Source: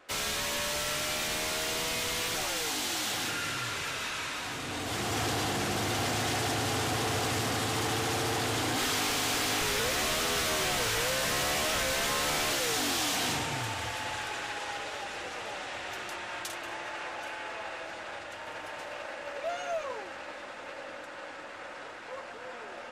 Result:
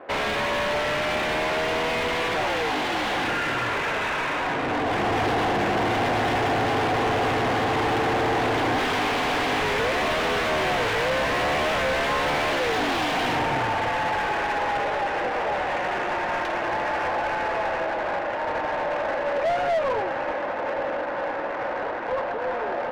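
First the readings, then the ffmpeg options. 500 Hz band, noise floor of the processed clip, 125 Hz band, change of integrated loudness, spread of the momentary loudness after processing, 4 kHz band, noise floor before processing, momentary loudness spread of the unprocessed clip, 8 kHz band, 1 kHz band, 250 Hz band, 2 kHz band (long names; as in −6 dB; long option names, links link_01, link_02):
+11.5 dB, −29 dBFS, +4.5 dB, +6.5 dB, 5 LU, +1.0 dB, −43 dBFS, 14 LU, −9.0 dB, +11.5 dB, +8.5 dB, +8.0 dB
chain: -filter_complex "[0:a]equalizer=frequency=1300:width=4.1:gain=-6.5,adynamicsmooth=sensitivity=5:basefreq=950,asplit=2[link_01][link_02];[link_02]highpass=frequency=720:poles=1,volume=27dB,asoftclip=type=tanh:threshold=-19dB[link_03];[link_01][link_03]amix=inputs=2:normalize=0,lowpass=frequency=1500:poles=1,volume=-6dB,volume=4dB"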